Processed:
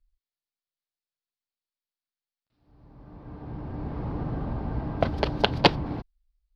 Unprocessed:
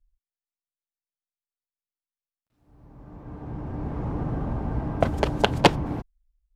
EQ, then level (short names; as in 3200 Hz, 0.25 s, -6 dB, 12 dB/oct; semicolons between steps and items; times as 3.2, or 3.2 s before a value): resonant high shelf 5900 Hz -9.5 dB, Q 3; -2.5 dB